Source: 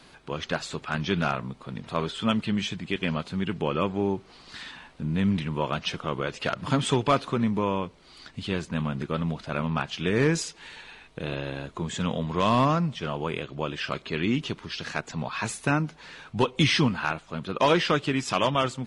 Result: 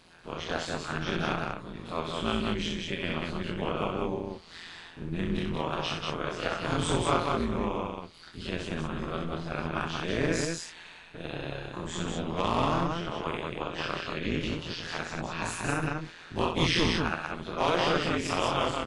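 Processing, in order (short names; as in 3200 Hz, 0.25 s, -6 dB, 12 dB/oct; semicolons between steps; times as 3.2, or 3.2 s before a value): spectral dilation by 60 ms; AM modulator 170 Hz, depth 100%; loudspeakers at several distances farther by 22 m -6 dB, 64 m -3 dB; gain -5 dB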